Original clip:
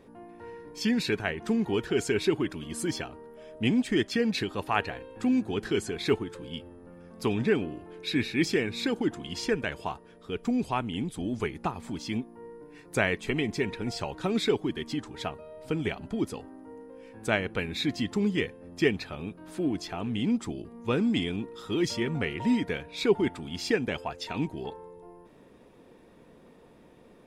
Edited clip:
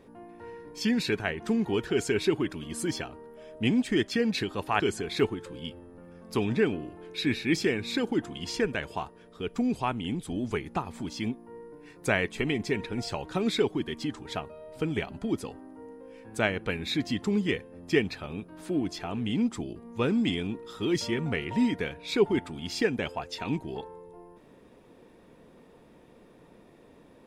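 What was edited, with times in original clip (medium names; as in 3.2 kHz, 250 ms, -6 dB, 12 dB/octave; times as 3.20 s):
4.80–5.69 s: delete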